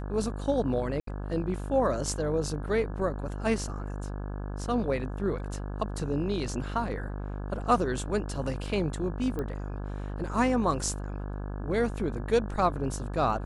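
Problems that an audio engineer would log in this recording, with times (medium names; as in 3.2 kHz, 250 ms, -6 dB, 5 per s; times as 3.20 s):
buzz 50 Hz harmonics 34 -35 dBFS
1.00–1.07 s: dropout 73 ms
9.39 s: pop -22 dBFS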